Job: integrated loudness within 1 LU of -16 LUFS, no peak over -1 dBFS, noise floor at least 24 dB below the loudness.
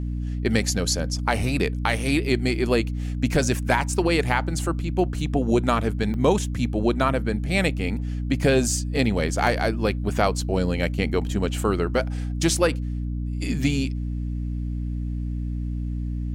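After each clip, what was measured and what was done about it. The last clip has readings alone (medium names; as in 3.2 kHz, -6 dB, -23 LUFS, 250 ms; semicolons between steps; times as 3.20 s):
dropouts 2; longest dropout 1.5 ms; hum 60 Hz; highest harmonic 300 Hz; hum level -25 dBFS; loudness -24.0 LUFS; peak level -6.5 dBFS; loudness target -16.0 LUFS
-> interpolate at 6.14/9.47 s, 1.5 ms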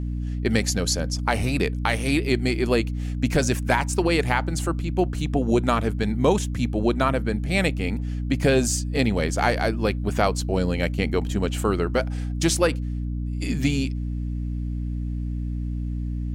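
dropouts 0; hum 60 Hz; highest harmonic 300 Hz; hum level -25 dBFS
-> de-hum 60 Hz, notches 5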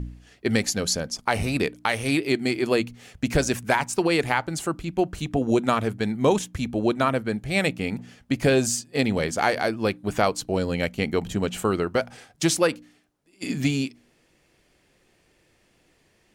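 hum not found; loudness -24.5 LUFS; peak level -7.5 dBFS; loudness target -16.0 LUFS
-> trim +8.5 dB; peak limiter -1 dBFS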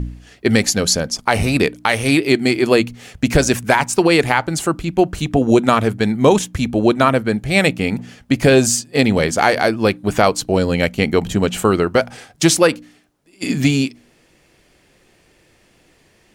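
loudness -16.5 LUFS; peak level -1.0 dBFS; noise floor -56 dBFS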